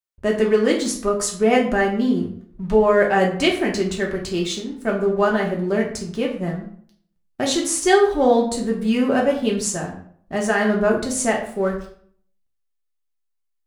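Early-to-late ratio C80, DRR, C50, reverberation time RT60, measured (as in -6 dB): 11.0 dB, -1.5 dB, 7.5 dB, 0.55 s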